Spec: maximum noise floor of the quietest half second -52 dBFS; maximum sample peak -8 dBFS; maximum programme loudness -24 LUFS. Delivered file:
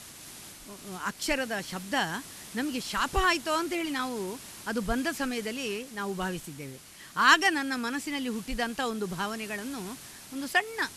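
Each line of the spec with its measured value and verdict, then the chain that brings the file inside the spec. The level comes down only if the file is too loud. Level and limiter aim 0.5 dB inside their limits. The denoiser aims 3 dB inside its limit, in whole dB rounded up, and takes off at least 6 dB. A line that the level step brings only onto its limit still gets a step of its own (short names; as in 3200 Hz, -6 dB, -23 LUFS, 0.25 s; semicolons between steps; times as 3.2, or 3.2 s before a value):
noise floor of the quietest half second -46 dBFS: fail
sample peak -9.0 dBFS: OK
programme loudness -29.5 LUFS: OK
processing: denoiser 9 dB, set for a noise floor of -46 dBFS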